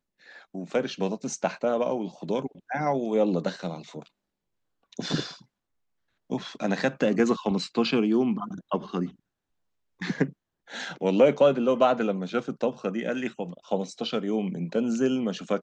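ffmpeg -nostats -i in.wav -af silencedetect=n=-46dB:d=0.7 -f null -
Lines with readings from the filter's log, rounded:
silence_start: 4.07
silence_end: 4.93 | silence_duration: 0.86
silence_start: 5.42
silence_end: 6.30 | silence_duration: 0.88
silence_start: 9.12
silence_end: 10.01 | silence_duration: 0.89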